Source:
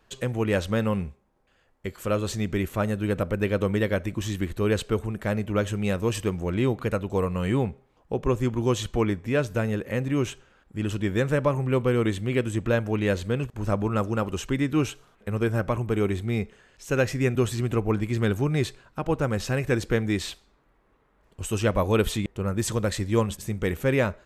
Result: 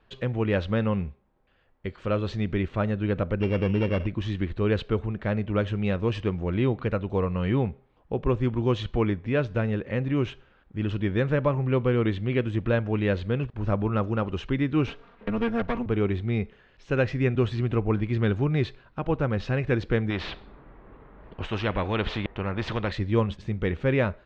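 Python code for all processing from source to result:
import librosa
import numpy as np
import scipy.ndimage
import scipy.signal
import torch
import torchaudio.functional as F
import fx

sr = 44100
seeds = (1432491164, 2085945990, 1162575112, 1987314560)

y = fx.chain(x, sr, fx.sample_sort(block=16),
    fx.spacing_loss(db_at_10k=21),
    fx.env_flatten(amount_pct=50), at=(3.4, 4.07))
y = fx.chain(y, sr, fx.lower_of_two(delay_ms=4.3),
    fx.band_squash(depth_pct=40), at=(14.87, 15.86))
y = fx.chain(y, sr, fx.spacing_loss(db_at_10k=29),
    fx.spectral_comp(ratio=2.0), at=(20.1, 22.92))
y = scipy.signal.sosfilt(scipy.signal.butter(4, 4000.0, 'lowpass', fs=sr, output='sos'), y)
y = fx.low_shelf(y, sr, hz=170.0, db=3.5)
y = y * librosa.db_to_amplitude(-1.5)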